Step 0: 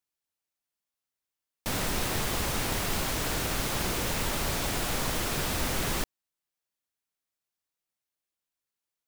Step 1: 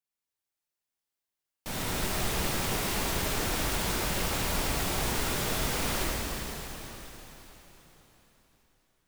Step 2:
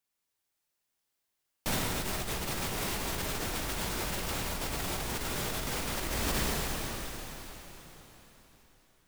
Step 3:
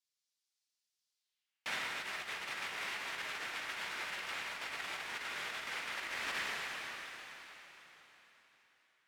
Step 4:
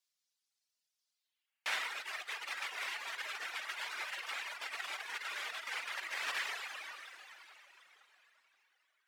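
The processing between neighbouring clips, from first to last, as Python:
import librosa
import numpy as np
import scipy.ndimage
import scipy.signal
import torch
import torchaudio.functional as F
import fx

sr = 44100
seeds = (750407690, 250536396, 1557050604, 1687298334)

y1 = fx.rev_plate(x, sr, seeds[0], rt60_s=4.1, hf_ratio=1.0, predelay_ms=0, drr_db=-6.0)
y1 = y1 * librosa.db_to_amplitude(-7.0)
y2 = fx.over_compress(y1, sr, threshold_db=-35.0, ratio=-1.0)
y2 = y2 * librosa.db_to_amplitude(1.5)
y3 = fx.filter_sweep_bandpass(y2, sr, from_hz=4900.0, to_hz=2000.0, start_s=1.13, end_s=1.7, q=1.5)
y3 = y3 * librosa.db_to_amplitude(1.5)
y4 = scipy.signal.sosfilt(scipy.signal.butter(2, 560.0, 'highpass', fs=sr, output='sos'), y3)
y4 = fx.dereverb_blind(y4, sr, rt60_s=2.0)
y4 = y4 * librosa.db_to_amplitude(3.5)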